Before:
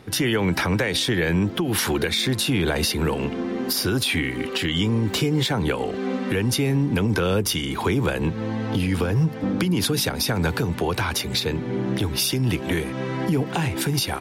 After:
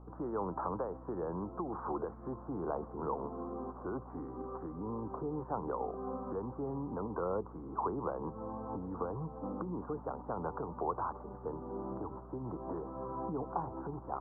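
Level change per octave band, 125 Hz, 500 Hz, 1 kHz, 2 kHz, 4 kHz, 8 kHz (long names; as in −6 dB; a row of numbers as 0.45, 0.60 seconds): −22.0 dB, −12.5 dB, −7.0 dB, −31.0 dB, below −40 dB, below −40 dB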